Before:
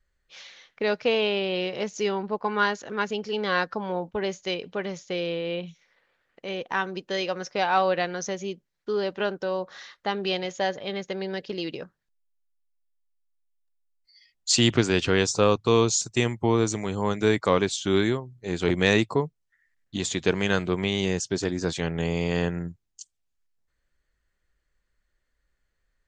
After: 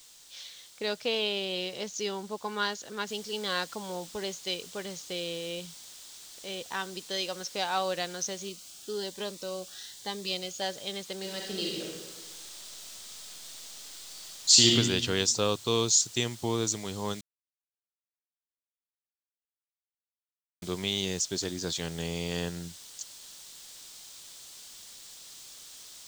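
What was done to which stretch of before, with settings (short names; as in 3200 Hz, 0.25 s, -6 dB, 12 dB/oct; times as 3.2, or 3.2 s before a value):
3.07 noise floor step -52 dB -46 dB
8.49–10.62 cascading phaser rising 1.1 Hz
11.18–14.73 reverb throw, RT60 1.3 s, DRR -2 dB
17.21–20.62 mute
whole clip: band shelf 5200 Hz +10.5 dB; gain -8 dB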